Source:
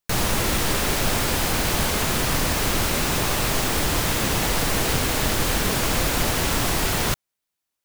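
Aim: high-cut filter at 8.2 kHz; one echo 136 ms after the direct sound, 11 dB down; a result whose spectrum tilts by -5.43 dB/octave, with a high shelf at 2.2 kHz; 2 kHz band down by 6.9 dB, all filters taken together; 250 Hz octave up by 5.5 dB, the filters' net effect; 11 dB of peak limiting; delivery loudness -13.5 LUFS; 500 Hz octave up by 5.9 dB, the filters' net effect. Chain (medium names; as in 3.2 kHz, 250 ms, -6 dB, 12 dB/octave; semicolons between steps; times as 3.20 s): low-pass 8.2 kHz; peaking EQ 250 Hz +5.5 dB; peaking EQ 500 Hz +6.5 dB; peaking EQ 2 kHz -5.5 dB; treble shelf 2.2 kHz -7 dB; peak limiter -19.5 dBFS; delay 136 ms -11 dB; trim +15 dB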